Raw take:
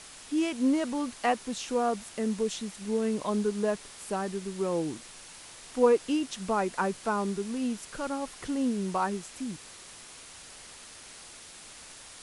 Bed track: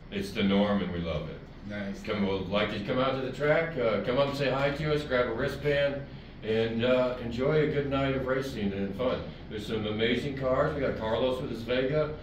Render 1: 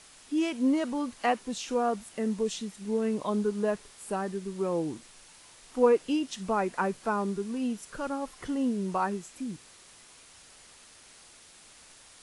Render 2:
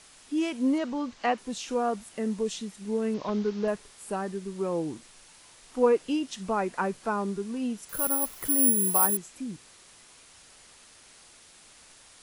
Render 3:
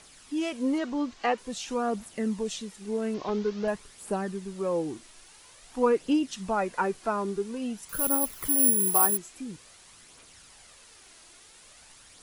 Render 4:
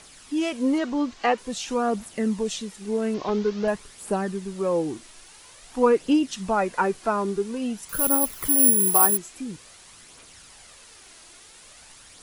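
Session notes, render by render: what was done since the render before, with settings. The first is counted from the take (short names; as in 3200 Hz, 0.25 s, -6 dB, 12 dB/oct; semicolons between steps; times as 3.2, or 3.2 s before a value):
noise print and reduce 6 dB
0.78–1.38 LPF 6600 Hz 24 dB/oct; 3.14–3.68 delta modulation 32 kbps, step -42.5 dBFS; 7.89–9.17 careless resampling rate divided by 4×, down none, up zero stuff
phaser 0.49 Hz, delay 3.2 ms, feedback 39%
gain +4.5 dB; limiter -1 dBFS, peak gain reduction 1 dB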